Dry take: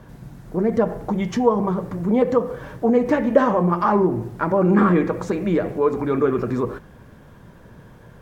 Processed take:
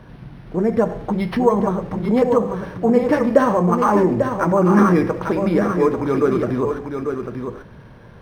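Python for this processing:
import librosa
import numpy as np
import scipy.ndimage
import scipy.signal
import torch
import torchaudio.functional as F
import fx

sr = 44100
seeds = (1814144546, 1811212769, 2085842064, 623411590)

y = fx.high_shelf(x, sr, hz=3800.0, db=9.0)
y = y + 10.0 ** (-6.5 / 20.0) * np.pad(y, (int(844 * sr / 1000.0), 0))[:len(y)]
y = np.interp(np.arange(len(y)), np.arange(len(y))[::6], y[::6])
y = F.gain(torch.from_numpy(y), 1.5).numpy()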